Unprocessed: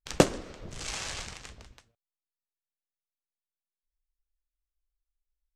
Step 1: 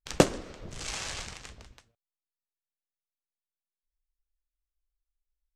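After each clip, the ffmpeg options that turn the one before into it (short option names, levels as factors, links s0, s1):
-af anull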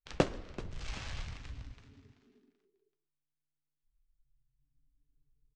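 -filter_complex "[0:a]lowpass=4200,asubboost=boost=9.5:cutoff=150,asplit=4[s0][s1][s2][s3];[s1]adelay=383,afreqshift=-150,volume=0.178[s4];[s2]adelay=766,afreqshift=-300,volume=0.0661[s5];[s3]adelay=1149,afreqshift=-450,volume=0.0243[s6];[s0][s4][s5][s6]amix=inputs=4:normalize=0,volume=0.447"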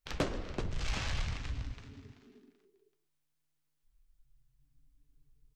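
-filter_complex "[0:a]asplit=2[s0][s1];[s1]alimiter=limit=0.0631:level=0:latency=1:release=263,volume=1.33[s2];[s0][s2]amix=inputs=2:normalize=0,asoftclip=type=tanh:threshold=0.0668"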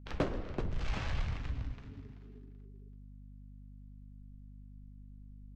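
-af "lowpass=f=1600:p=1,aeval=exprs='val(0)+0.00282*(sin(2*PI*50*n/s)+sin(2*PI*2*50*n/s)/2+sin(2*PI*3*50*n/s)/3+sin(2*PI*4*50*n/s)/4+sin(2*PI*5*50*n/s)/5)':c=same,volume=1.12"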